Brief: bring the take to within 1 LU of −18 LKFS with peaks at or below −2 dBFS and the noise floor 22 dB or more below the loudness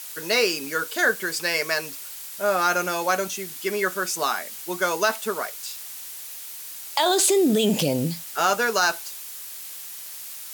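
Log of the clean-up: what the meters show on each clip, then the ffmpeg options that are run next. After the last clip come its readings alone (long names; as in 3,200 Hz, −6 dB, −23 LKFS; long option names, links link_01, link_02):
background noise floor −38 dBFS; target noise floor −46 dBFS; integrated loudness −24.0 LKFS; sample peak −8.0 dBFS; target loudness −18.0 LKFS
→ -af "afftdn=noise_reduction=8:noise_floor=-38"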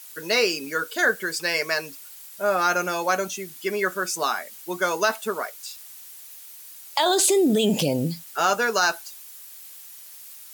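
background noise floor −44 dBFS; target noise floor −46 dBFS
→ -af "afftdn=noise_reduction=6:noise_floor=-44"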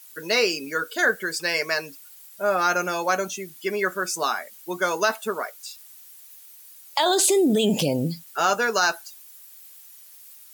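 background noise floor −48 dBFS; integrated loudness −23.5 LKFS; sample peak −9.0 dBFS; target loudness −18.0 LKFS
→ -af "volume=5.5dB"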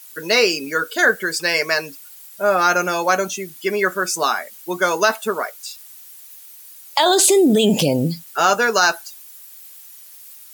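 integrated loudness −18.0 LKFS; sample peak −3.5 dBFS; background noise floor −42 dBFS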